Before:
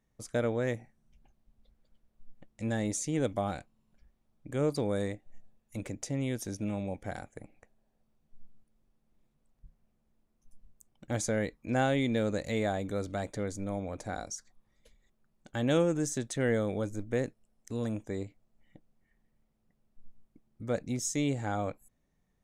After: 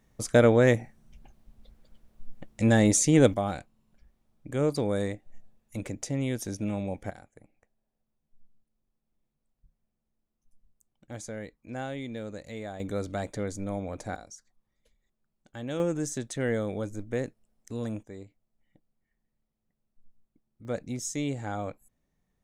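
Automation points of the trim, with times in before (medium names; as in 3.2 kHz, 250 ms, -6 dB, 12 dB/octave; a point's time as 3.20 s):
+11 dB
from 3.34 s +3 dB
from 7.10 s -8 dB
from 12.80 s +2 dB
from 14.16 s -7 dB
from 15.80 s 0 dB
from 18.03 s -7.5 dB
from 20.65 s -1 dB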